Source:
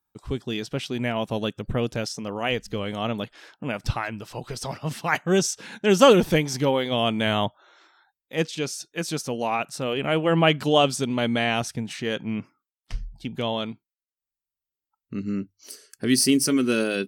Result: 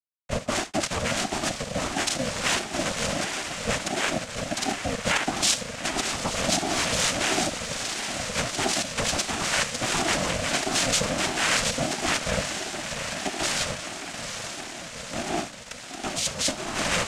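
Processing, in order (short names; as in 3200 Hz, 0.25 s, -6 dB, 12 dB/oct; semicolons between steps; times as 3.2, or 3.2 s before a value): level-crossing sampler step -25.5 dBFS; Chebyshev band-stop 380–1500 Hz, order 5; on a send at -10 dB: reverb, pre-delay 3 ms; on the sum: negative-ratio compressor -28 dBFS, ratio -1; in parallel at -9 dB: backlash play -24 dBFS; on the sum: diffused feedback echo 0.881 s, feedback 66%, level -11 dB; sample leveller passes 3; bell 250 Hz -13.5 dB 1.2 oct; noise vocoder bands 4; ring modulator with a swept carrier 430 Hz, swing 20%, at 1.5 Hz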